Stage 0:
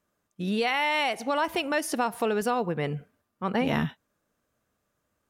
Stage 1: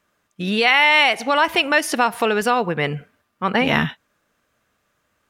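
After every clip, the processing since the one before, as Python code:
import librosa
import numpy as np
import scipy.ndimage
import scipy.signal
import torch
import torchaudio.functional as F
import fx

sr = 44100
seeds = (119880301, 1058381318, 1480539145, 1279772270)

y = fx.peak_eq(x, sr, hz=2300.0, db=8.5, octaves=2.5)
y = y * 10.0 ** (5.0 / 20.0)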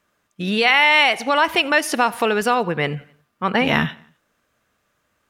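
y = fx.echo_feedback(x, sr, ms=87, feedback_pct=52, wet_db=-24.0)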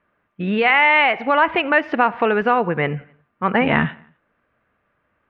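y = scipy.signal.sosfilt(scipy.signal.butter(4, 2400.0, 'lowpass', fs=sr, output='sos'), x)
y = y * 10.0 ** (1.5 / 20.0)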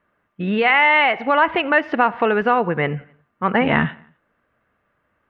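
y = fx.notch(x, sr, hz=2400.0, q=18.0)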